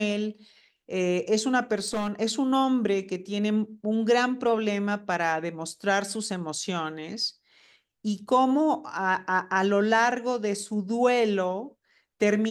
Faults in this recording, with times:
0:01.78–0:02.11: clipping −24 dBFS

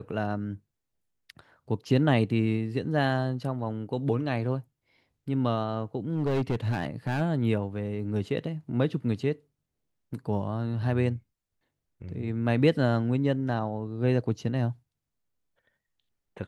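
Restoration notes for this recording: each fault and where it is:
0:06.12–0:07.22: clipping −22.5 dBFS

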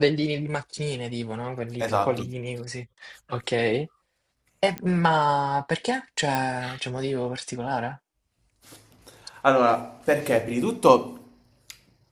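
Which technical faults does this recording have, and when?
0:04.78: click −16 dBFS
0:06.35: click

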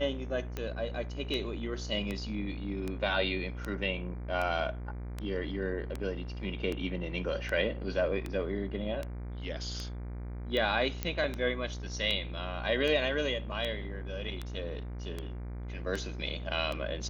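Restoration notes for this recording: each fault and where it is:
mains buzz 60 Hz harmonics 40 −39 dBFS
scratch tick 78 rpm −21 dBFS
0:11.03: click −16 dBFS

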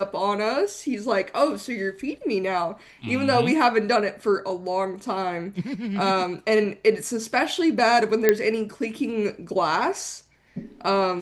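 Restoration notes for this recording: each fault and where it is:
0:08.29: click −4 dBFS

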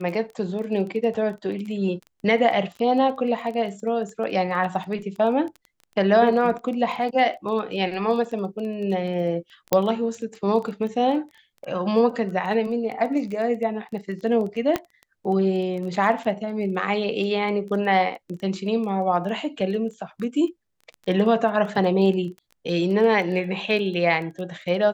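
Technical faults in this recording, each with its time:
surface crackle 14 per second −31 dBFS
0:09.73: click −4 dBFS
0:14.76: click −9 dBFS

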